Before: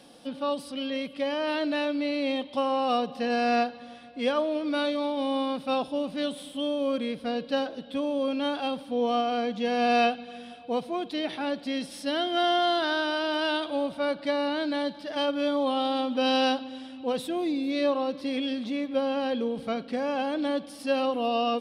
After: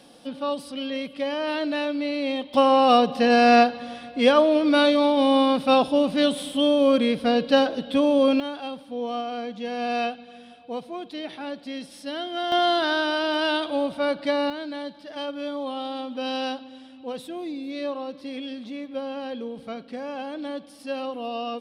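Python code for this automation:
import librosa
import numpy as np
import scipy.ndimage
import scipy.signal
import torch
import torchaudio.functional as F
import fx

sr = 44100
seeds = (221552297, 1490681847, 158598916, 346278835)

y = fx.gain(x, sr, db=fx.steps((0.0, 1.5), (2.54, 9.0), (8.4, -3.5), (12.52, 3.5), (14.5, -4.5)))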